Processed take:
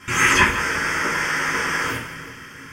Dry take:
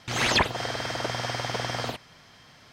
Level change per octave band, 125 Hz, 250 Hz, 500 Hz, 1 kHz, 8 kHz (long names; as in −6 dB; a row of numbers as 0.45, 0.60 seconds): +2.0, +6.5, +2.0, +7.5, +9.0 decibels